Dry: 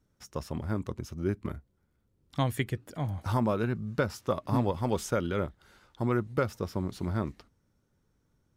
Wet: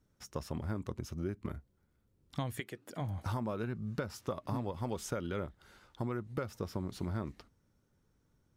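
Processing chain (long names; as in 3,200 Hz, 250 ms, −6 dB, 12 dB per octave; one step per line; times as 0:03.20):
downward compressor 6 to 1, threshold −32 dBFS, peak gain reduction 10 dB
0:02.59–0:03.00: high-pass filter 380 Hz → 150 Hz 12 dB per octave
level −1 dB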